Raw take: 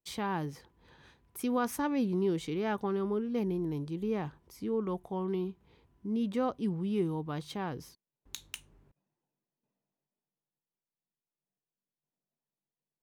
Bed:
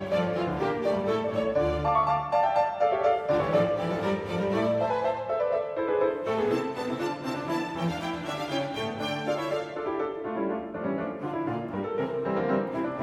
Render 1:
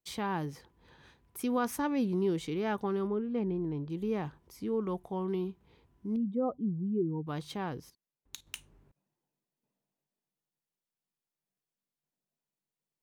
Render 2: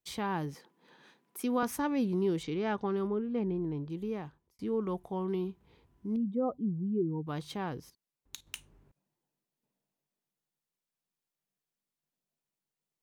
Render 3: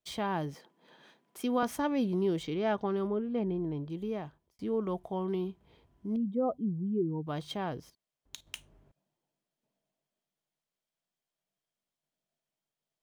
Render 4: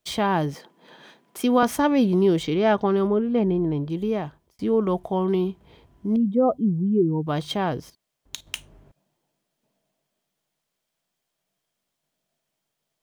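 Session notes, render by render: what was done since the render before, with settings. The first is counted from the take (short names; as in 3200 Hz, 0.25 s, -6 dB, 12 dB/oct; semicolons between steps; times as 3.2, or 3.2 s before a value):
3.07–3.9 air absorption 270 m; 6.16–7.27 spectral contrast raised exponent 2; 7.8–8.47 level quantiser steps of 14 dB
0.54–1.63 steep high-pass 170 Hz; 2.43–2.97 LPF 6300 Hz 24 dB/oct; 3.56–4.59 fade out equal-power
median filter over 3 samples; small resonant body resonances 640/3200 Hz, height 9 dB, ringing for 30 ms
gain +10.5 dB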